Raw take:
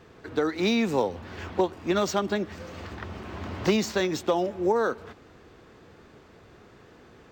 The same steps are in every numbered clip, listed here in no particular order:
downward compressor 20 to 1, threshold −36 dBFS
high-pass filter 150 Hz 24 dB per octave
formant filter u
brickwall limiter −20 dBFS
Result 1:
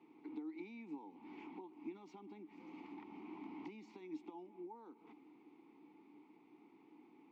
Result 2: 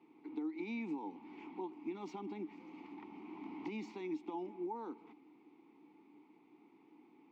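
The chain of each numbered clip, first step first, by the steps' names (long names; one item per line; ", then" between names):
brickwall limiter, then high-pass filter, then downward compressor, then formant filter
high-pass filter, then brickwall limiter, then formant filter, then downward compressor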